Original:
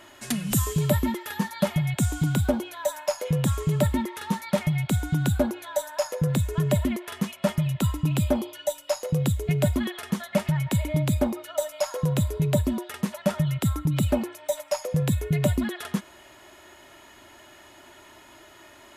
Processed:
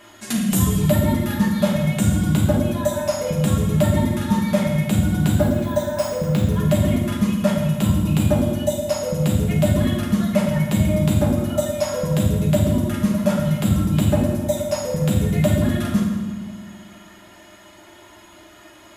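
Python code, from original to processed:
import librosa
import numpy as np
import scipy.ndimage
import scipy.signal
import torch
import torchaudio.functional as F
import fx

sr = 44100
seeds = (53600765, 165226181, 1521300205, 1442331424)

y = fx.dereverb_blind(x, sr, rt60_s=0.64)
y = fx.resample_bad(y, sr, factor=3, down='filtered', up='hold', at=(5.41, 6.47))
y = fx.rev_fdn(y, sr, rt60_s=1.4, lf_ratio=1.55, hf_ratio=0.8, size_ms=29.0, drr_db=-3.5)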